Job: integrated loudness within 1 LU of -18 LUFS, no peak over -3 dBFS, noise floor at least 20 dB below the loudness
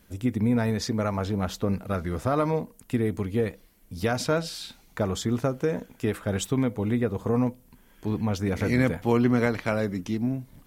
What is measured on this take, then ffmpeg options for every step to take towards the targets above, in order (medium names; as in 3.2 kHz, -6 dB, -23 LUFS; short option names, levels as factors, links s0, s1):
loudness -27.0 LUFS; peak level -9.0 dBFS; loudness target -18.0 LUFS
-> -af "volume=2.82,alimiter=limit=0.708:level=0:latency=1"